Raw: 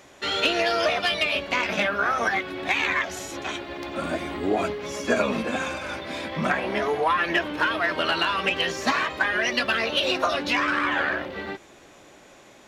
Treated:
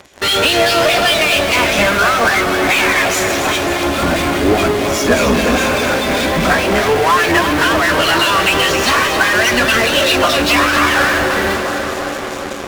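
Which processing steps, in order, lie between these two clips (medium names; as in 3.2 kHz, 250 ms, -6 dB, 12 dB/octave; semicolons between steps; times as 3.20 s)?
octave divider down 2 oct, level -6 dB; harmonic tremolo 4.9 Hz, depth 70%, crossover 2.1 kHz; tape echo 356 ms, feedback 88%, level -13 dB, low-pass 1.5 kHz; in parallel at -11 dB: fuzz box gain 48 dB, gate -46 dBFS; on the sum: two-band feedback delay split 390 Hz, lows 115 ms, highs 267 ms, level -8.5 dB; trim +7 dB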